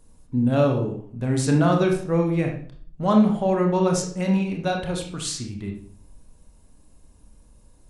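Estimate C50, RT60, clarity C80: 5.5 dB, 0.50 s, 9.5 dB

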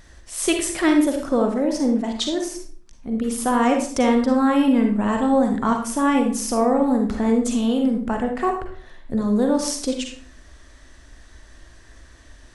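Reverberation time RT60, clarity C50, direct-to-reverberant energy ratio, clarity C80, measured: 0.50 s, 5.0 dB, 3.0 dB, 9.5 dB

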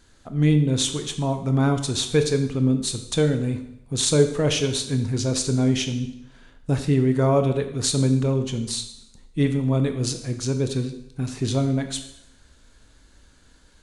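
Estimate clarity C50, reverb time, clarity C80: 9.5 dB, 0.80 s, 12.0 dB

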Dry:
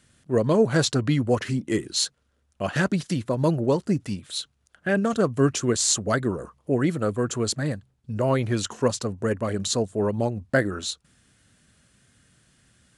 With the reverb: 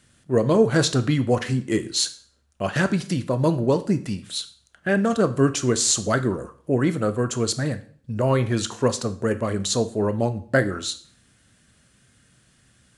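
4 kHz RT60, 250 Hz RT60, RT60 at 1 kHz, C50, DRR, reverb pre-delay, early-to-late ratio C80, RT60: 0.45 s, 0.50 s, 0.50 s, 15.5 dB, 10.0 dB, 6 ms, 19.0 dB, 0.50 s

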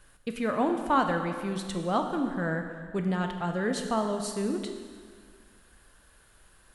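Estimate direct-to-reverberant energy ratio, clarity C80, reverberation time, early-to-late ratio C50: 5.0 dB, 7.5 dB, 1.9 s, 6.0 dB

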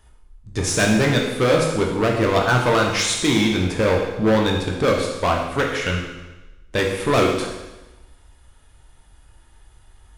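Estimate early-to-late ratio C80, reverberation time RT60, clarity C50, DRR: 5.5 dB, 1.1 s, 3.5 dB, -1.0 dB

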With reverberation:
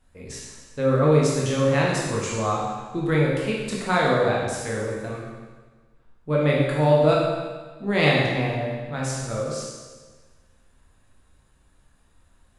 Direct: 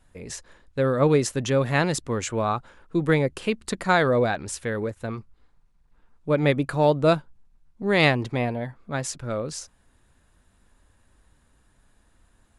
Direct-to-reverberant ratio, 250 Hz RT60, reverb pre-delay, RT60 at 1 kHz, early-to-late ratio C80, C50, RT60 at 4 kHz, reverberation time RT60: -4.5 dB, 1.4 s, 15 ms, 1.4 s, 2.5 dB, 0.0 dB, 1.4 s, 1.4 s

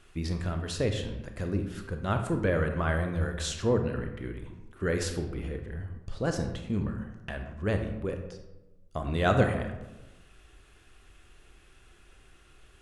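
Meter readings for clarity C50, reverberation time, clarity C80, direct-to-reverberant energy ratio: 7.0 dB, 1.0 s, 9.5 dB, 5.0 dB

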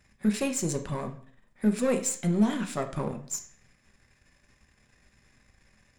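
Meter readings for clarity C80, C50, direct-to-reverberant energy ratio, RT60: 16.5 dB, 12.0 dB, 5.0 dB, 0.50 s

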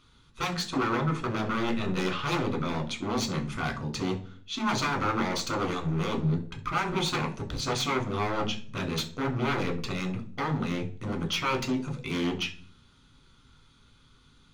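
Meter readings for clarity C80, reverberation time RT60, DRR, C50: 17.5 dB, 0.45 s, 2.5 dB, 13.0 dB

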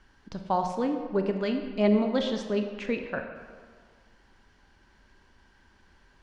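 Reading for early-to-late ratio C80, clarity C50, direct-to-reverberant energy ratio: 8.0 dB, 6.5 dB, 5.0 dB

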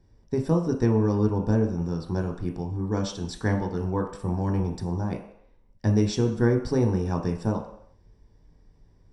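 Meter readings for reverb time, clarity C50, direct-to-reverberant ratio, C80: not exponential, 7.5 dB, 2.5 dB, 10.5 dB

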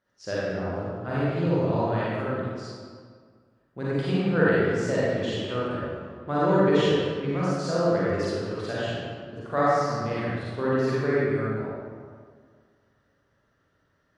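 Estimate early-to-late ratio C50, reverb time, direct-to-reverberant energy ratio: -6.5 dB, 1.9 s, -9.5 dB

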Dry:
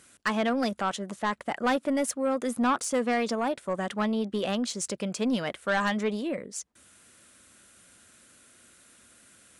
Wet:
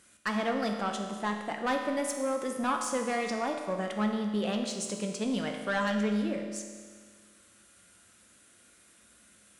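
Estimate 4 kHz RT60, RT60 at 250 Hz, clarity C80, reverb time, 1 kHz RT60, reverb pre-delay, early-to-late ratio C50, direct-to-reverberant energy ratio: 1.7 s, 1.7 s, 6.5 dB, 1.7 s, 1.7 s, 6 ms, 5.0 dB, 3.0 dB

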